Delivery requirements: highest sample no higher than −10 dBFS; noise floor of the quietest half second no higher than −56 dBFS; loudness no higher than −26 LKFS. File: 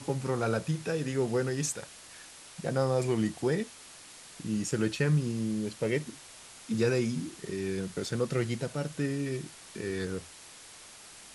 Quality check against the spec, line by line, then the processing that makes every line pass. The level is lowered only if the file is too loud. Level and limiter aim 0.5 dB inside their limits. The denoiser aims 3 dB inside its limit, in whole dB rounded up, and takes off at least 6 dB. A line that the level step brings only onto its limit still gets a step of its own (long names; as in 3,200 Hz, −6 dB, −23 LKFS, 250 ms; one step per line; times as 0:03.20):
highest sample −15.0 dBFS: in spec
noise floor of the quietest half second −50 dBFS: out of spec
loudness −31.5 LKFS: in spec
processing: broadband denoise 9 dB, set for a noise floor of −50 dBFS